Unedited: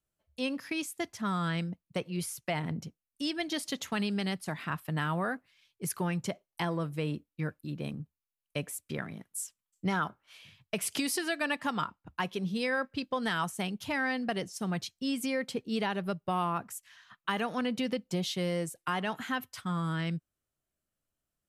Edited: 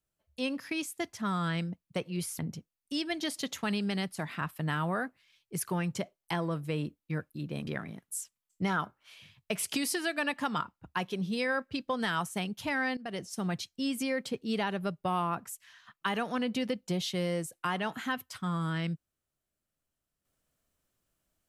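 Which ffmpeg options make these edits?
-filter_complex "[0:a]asplit=4[a][b][c][d];[a]atrim=end=2.392[e];[b]atrim=start=2.678:end=7.962[f];[c]atrim=start=8.898:end=14.2,asetpts=PTS-STARTPTS,afade=t=out:st=5.298:d=0.004:c=hsin:silence=0.133352[g];[d]atrim=start=14.2,asetpts=PTS-STARTPTS,afade=t=in:d=0.29:silence=0.133352[h];[e][f]acrossfade=d=0.004:c1=hsin:c2=hsin[i];[g][h]concat=n=2:v=0:a=1[j];[i][j]acrossfade=d=0.004:c1=hsin:c2=hsin"

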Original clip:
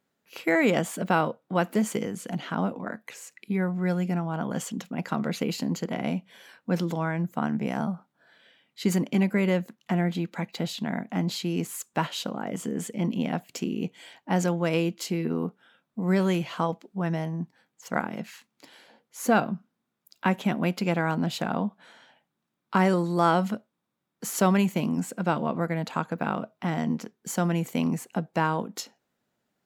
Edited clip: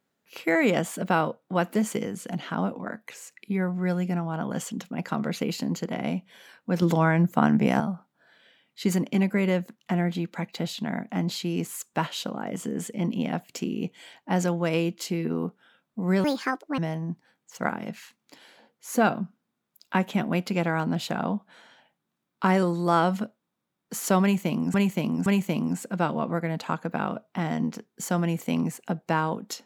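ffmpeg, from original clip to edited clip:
-filter_complex "[0:a]asplit=7[a][b][c][d][e][f][g];[a]atrim=end=6.822[h];[b]atrim=start=6.818:end=7.802,asetpts=PTS-STARTPTS,volume=7dB[i];[c]atrim=start=7.798:end=16.244[j];[d]atrim=start=16.24:end=17.09,asetpts=PTS-STARTPTS,asetrate=69237,aresample=44100[k];[e]atrim=start=17.086:end=25.052[l];[f]atrim=start=24.528:end=25.052[m];[g]atrim=start=24.528[n];[h][i]acrossfade=d=0.004:c1=hsin:c2=hsin[o];[o][j]acrossfade=d=0.004:c1=hsin:c2=hsin[p];[p][k]acrossfade=d=0.004:c1=hsin:c2=hsin[q];[q][l]acrossfade=d=0.004:c1=hsin:c2=hsin[r];[r][m]acrossfade=d=0.004:c1=hsin:c2=hsin[s];[s][n]acrossfade=d=0.004:c1=hsin:c2=hsin"

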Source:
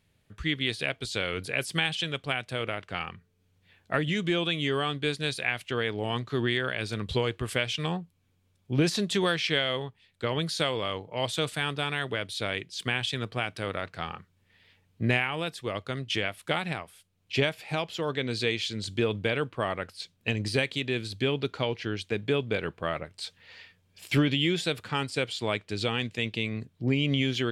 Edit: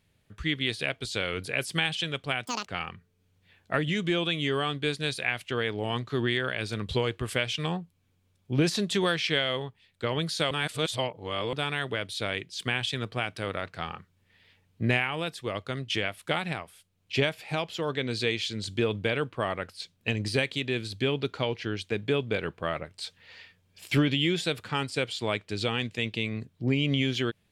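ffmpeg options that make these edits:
-filter_complex "[0:a]asplit=5[a][b][c][d][e];[a]atrim=end=2.464[f];[b]atrim=start=2.46:end=2.86,asetpts=PTS-STARTPTS,asetrate=88200,aresample=44100[g];[c]atrim=start=2.856:end=10.712[h];[d]atrim=start=10.708:end=11.732,asetpts=PTS-STARTPTS,areverse[i];[e]atrim=start=11.728[j];[f][g]acrossfade=d=0.004:c1=hsin:c2=hsin[k];[k][h]acrossfade=d=0.004:c1=hsin:c2=hsin[l];[l][i]acrossfade=d=0.004:c1=hsin:c2=hsin[m];[m][j]acrossfade=d=0.004:c1=hsin:c2=hsin"

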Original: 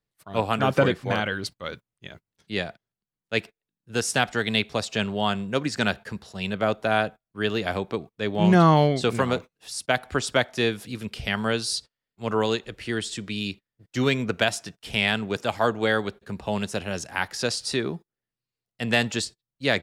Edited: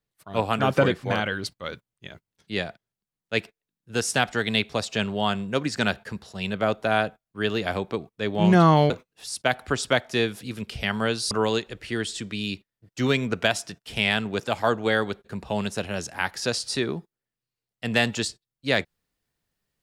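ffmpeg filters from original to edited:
-filter_complex "[0:a]asplit=3[a][b][c];[a]atrim=end=8.902[d];[b]atrim=start=9.338:end=11.752[e];[c]atrim=start=12.278[f];[d][e]acrossfade=d=0.004:c1=hsin:c2=hsin[g];[g][f]acrossfade=d=0.004:c1=hsin:c2=hsin"

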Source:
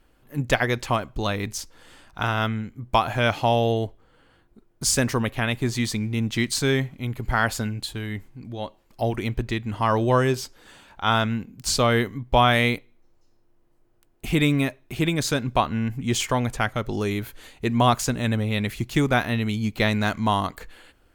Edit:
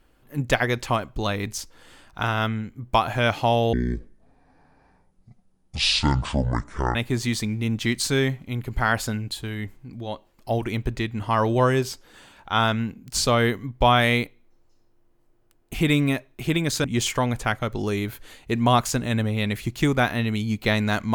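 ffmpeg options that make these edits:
-filter_complex "[0:a]asplit=4[a][b][c][d];[a]atrim=end=3.734[e];[b]atrim=start=3.73:end=5.47,asetpts=PTS-STARTPTS,asetrate=23814,aresample=44100[f];[c]atrim=start=5.466:end=15.362[g];[d]atrim=start=15.978[h];[e][f]acrossfade=d=0.004:c1=hsin:c2=hsin[i];[i][g]acrossfade=d=0.004:c1=hsin:c2=hsin[j];[j][h]acrossfade=d=0.004:c1=hsin:c2=hsin"

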